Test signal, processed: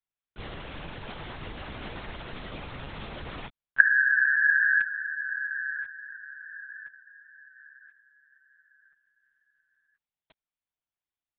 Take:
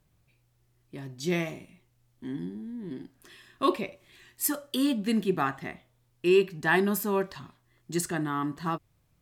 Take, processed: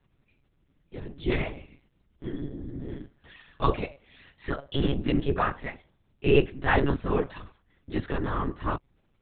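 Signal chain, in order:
random phases in short frames
one-pitch LPC vocoder at 8 kHz 140 Hz
level +1.5 dB

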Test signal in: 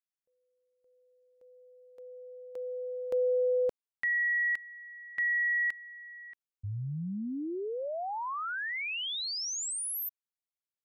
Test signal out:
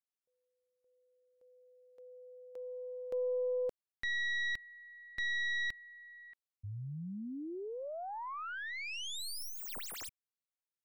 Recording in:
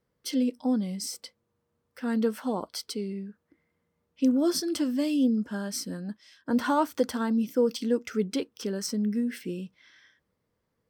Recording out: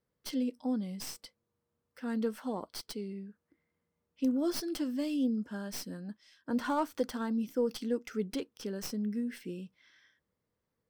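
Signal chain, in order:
stylus tracing distortion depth 0.094 ms
level −6.5 dB

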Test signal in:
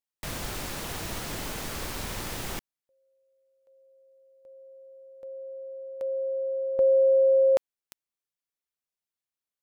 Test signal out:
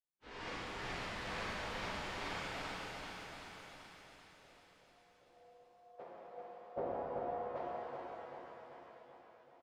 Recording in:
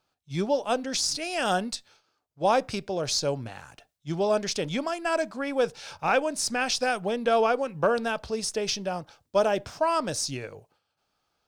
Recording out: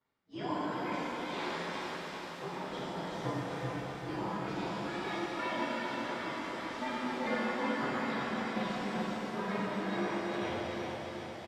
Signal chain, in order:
partials spread apart or drawn together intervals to 115%
high-pass filter 200 Hz 6 dB per octave
gate on every frequency bin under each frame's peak −10 dB weak
downward compressor, threshold −41 dBFS
amplitude tremolo 2.2 Hz, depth 72%
head-to-tape spacing loss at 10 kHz 43 dB
repeating echo 385 ms, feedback 60%, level −5 dB
reverb with rising layers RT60 2.9 s, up +7 semitones, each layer −8 dB, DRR −7.5 dB
level +9 dB

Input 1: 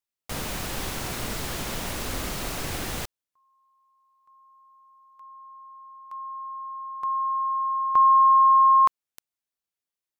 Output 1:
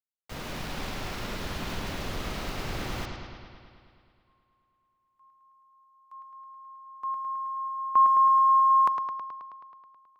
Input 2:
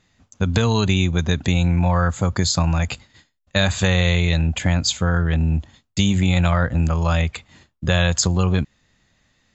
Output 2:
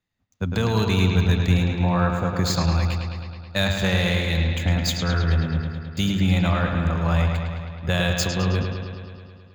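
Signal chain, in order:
running median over 5 samples
bucket-brigade delay 107 ms, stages 4,096, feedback 79%, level −5.5 dB
multiband upward and downward expander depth 40%
level −4 dB

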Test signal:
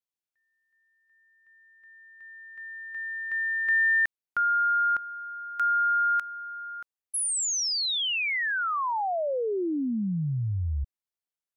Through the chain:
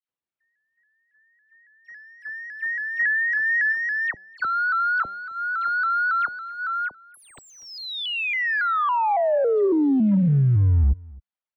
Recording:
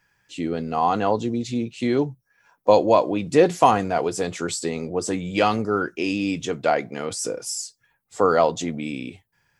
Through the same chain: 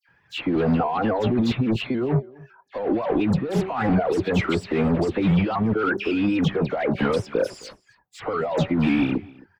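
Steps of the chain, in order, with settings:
reverb reduction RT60 1 s
high-pass filter 55 Hz 12 dB per octave
high-shelf EQ 7,100 Hz +10 dB
hum removal 197.1 Hz, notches 4
leveller curve on the samples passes 2
in parallel at +2 dB: brickwall limiter −11 dBFS
on the sum: compressor whose output falls as the input rises −19 dBFS, ratio −1
hard clipping −14.5 dBFS
high-frequency loss of the air 400 metres
all-pass dispersion lows, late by 87 ms, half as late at 2,000 Hz
on a send: single-tap delay 263 ms −23.5 dB
on the sum: pitch modulation by a square or saw wave saw up 3.6 Hz, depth 100 cents

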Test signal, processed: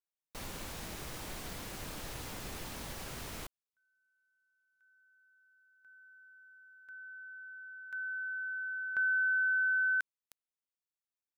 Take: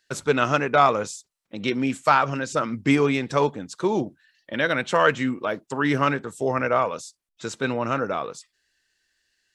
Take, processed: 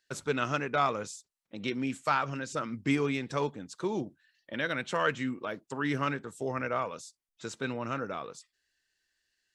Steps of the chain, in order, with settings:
dynamic equaliser 700 Hz, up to −4 dB, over −31 dBFS, Q 0.86
level −7.5 dB

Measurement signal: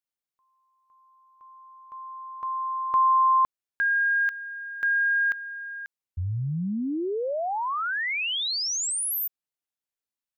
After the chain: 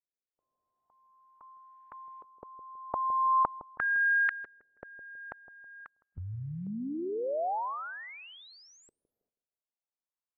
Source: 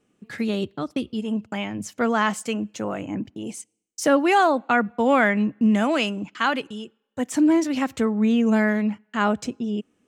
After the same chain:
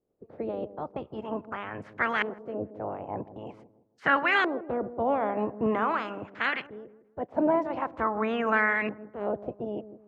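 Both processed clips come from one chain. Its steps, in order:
ceiling on every frequency bin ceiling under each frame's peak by 23 dB
auto-filter low-pass saw up 0.45 Hz 420–2,100 Hz
delay with a low-pass on its return 161 ms, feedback 32%, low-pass 620 Hz, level −12 dB
level −8.5 dB

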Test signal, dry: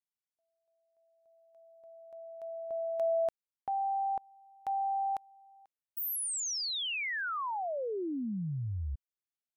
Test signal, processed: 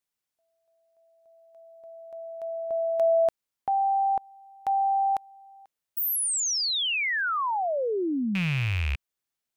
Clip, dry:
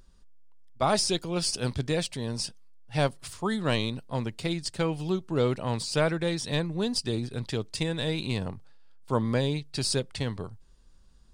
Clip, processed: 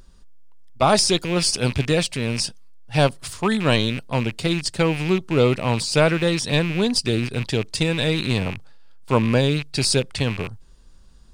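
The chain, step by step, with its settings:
loose part that buzzes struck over −39 dBFS, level −28 dBFS
level +8 dB

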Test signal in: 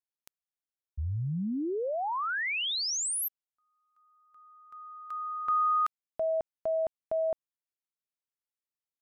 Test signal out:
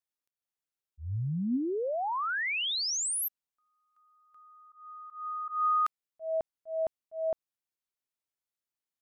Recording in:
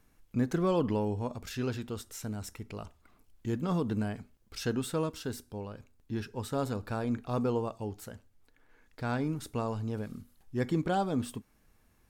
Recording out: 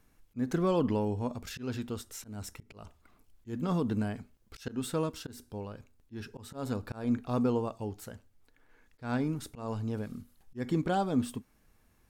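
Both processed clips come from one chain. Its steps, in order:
dynamic equaliser 250 Hz, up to +5 dB, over −49 dBFS, Q 7.8
volume swells 172 ms

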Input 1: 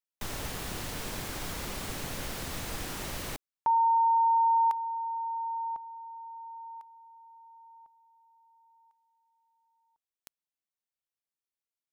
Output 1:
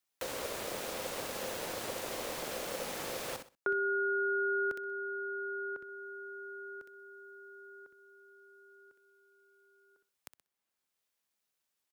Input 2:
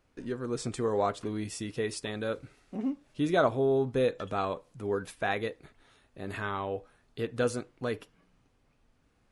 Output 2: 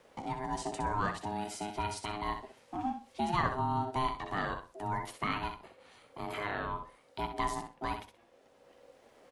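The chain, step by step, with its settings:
on a send: repeating echo 63 ms, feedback 21%, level −8 dB
on the sum: ring modulation 520 Hz
low-shelf EQ 130 Hz −6.5 dB
multiband upward and downward compressor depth 40%

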